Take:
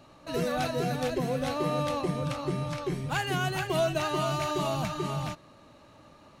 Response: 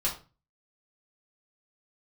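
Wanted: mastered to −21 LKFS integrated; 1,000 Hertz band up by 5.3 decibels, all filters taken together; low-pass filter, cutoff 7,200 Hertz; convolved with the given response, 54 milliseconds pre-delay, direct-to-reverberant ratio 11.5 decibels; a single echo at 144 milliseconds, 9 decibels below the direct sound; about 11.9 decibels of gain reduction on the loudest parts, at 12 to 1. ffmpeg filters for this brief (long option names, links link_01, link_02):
-filter_complex "[0:a]lowpass=7200,equalizer=frequency=1000:width_type=o:gain=7,acompressor=threshold=-32dB:ratio=12,aecho=1:1:144:0.355,asplit=2[link_01][link_02];[1:a]atrim=start_sample=2205,adelay=54[link_03];[link_02][link_03]afir=irnorm=-1:irlink=0,volume=-18.5dB[link_04];[link_01][link_04]amix=inputs=2:normalize=0,volume=14.5dB"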